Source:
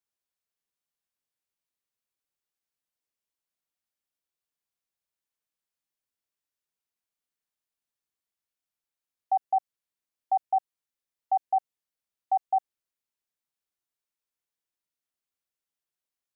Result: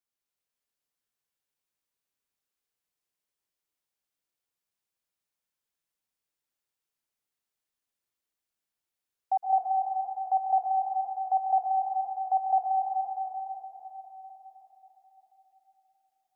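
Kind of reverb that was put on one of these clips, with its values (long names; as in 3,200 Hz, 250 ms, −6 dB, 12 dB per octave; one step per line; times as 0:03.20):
dense smooth reverb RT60 4.5 s, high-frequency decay 0.85×, pre-delay 105 ms, DRR −2 dB
level −2 dB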